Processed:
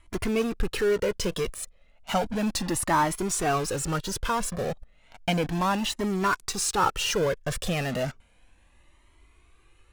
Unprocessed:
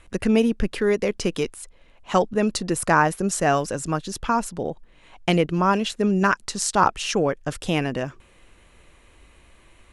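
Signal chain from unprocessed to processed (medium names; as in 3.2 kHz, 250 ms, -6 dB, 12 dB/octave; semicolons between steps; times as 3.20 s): in parallel at -9 dB: fuzz box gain 44 dB, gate -39 dBFS; on the sum: Shepard-style flanger rising 0.33 Hz; trim -4 dB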